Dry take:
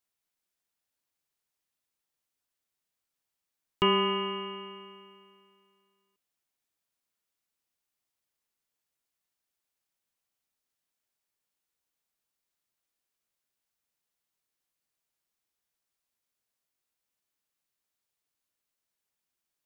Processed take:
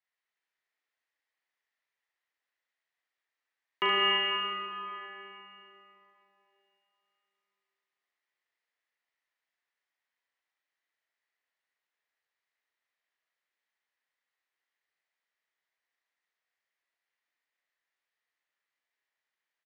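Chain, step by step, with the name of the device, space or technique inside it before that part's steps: station announcement (band-pass 490–3700 Hz; peaking EQ 1.9 kHz +11.5 dB 0.36 oct; loudspeakers at several distances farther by 13 m -6 dB, 25 m -5 dB; reverberation RT60 3.2 s, pre-delay 98 ms, DRR 1.5 dB); trim -3 dB

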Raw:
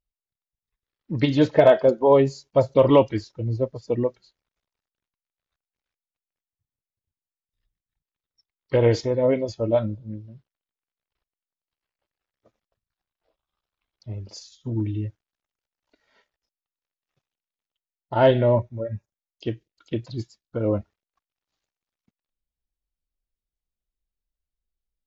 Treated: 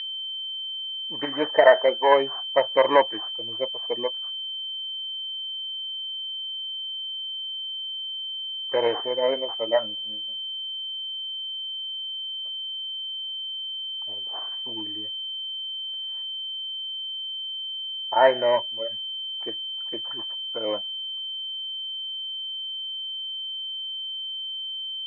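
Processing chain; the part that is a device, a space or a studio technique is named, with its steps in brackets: toy sound module (decimation joined by straight lines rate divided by 8×; class-D stage that switches slowly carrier 3.1 kHz; cabinet simulation 700–3700 Hz, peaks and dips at 920 Hz +5 dB, 1.8 kHz +9 dB, 3 kHz -7 dB); trim +3.5 dB

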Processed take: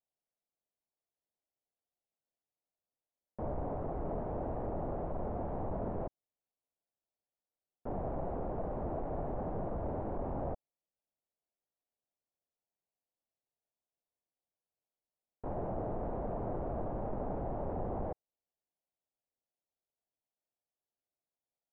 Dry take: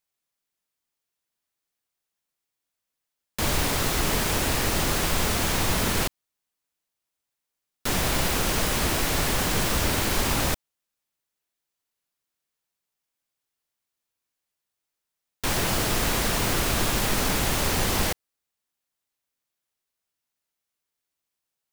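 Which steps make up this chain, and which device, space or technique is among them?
overdriven synthesiser ladder filter (saturation -23.5 dBFS, distortion -12 dB; four-pole ladder low-pass 820 Hz, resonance 45%); trim +1 dB

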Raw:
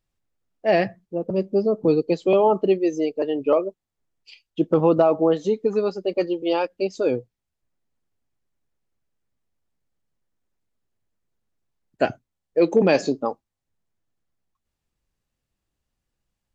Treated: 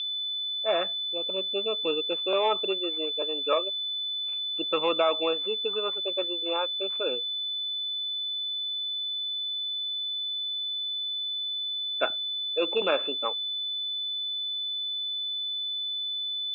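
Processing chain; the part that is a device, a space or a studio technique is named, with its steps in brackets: toy sound module (decimation joined by straight lines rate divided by 4×; class-D stage that switches slowly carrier 3.5 kHz; cabinet simulation 740–4300 Hz, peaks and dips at 770 Hz -8 dB, 1.3 kHz +7 dB, 1.9 kHz -8 dB, 2.7 kHz +10 dB, 3.9 kHz -6 dB)

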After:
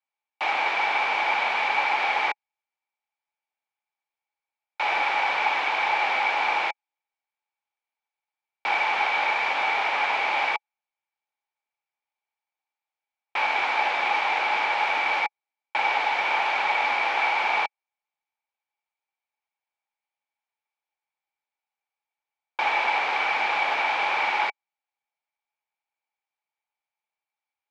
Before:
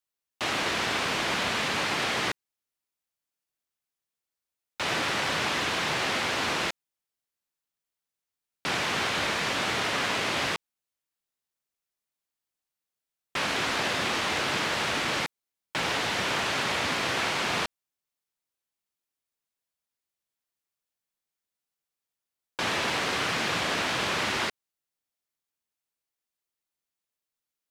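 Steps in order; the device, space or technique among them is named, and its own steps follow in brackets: tin-can telephone (band-pass 570–3100 Hz; small resonant body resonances 840/2300 Hz, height 16 dB, ringing for 30 ms)

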